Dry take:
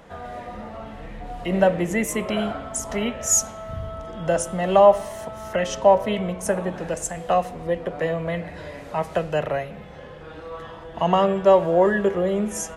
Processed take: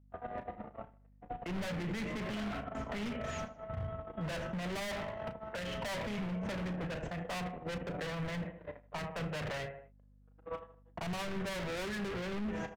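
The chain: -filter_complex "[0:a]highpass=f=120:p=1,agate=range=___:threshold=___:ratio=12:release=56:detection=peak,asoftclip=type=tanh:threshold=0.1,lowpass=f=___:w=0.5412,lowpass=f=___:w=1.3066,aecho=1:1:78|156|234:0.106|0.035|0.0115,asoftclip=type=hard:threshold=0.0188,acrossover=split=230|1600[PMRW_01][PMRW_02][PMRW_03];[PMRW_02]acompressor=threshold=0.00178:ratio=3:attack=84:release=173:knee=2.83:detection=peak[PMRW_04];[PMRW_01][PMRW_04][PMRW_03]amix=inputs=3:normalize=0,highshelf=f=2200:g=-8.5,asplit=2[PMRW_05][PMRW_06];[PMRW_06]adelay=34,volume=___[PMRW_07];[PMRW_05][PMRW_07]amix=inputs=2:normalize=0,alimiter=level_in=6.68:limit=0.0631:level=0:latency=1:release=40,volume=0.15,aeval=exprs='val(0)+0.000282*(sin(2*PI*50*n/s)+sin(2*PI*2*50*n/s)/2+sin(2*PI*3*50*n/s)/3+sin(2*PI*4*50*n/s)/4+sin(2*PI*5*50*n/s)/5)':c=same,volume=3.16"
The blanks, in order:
0.00126, 0.02, 2900, 2900, 0.237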